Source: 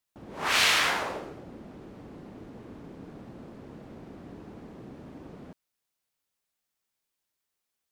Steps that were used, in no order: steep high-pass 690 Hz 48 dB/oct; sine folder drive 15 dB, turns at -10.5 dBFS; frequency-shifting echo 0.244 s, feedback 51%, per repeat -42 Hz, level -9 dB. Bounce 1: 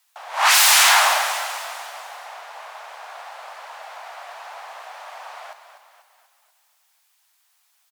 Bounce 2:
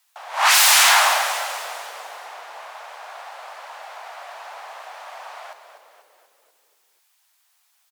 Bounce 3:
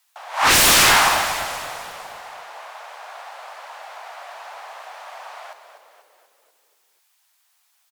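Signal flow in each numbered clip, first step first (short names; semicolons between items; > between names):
sine folder > frequency-shifting echo > steep high-pass; sine folder > steep high-pass > frequency-shifting echo; steep high-pass > sine folder > frequency-shifting echo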